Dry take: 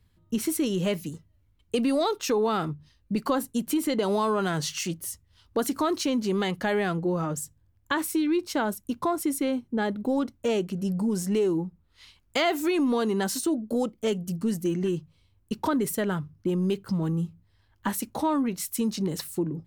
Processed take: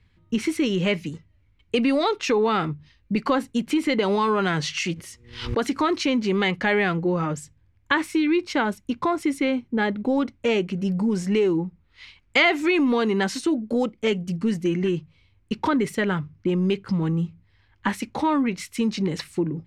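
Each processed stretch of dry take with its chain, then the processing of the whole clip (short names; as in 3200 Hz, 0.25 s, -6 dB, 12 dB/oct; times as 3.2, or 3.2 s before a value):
4.94–5.61 low shelf 280 Hz -5.5 dB + buzz 120 Hz, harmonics 4, -68 dBFS + backwards sustainer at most 92 dB/s
whole clip: LPF 5200 Hz 12 dB/oct; bell 2200 Hz +9 dB 0.67 oct; notch 650 Hz, Q 12; gain +3.5 dB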